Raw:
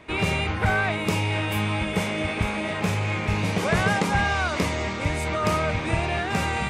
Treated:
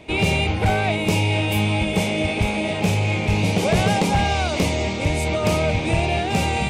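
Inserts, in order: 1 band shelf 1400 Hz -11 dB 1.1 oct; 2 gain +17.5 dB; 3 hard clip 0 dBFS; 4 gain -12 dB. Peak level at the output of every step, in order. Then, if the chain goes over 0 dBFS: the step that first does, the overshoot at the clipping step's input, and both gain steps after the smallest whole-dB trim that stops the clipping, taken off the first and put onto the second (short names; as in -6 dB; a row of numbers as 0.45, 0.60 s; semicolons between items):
-10.0, +7.5, 0.0, -12.0 dBFS; step 2, 7.5 dB; step 2 +9.5 dB, step 4 -4 dB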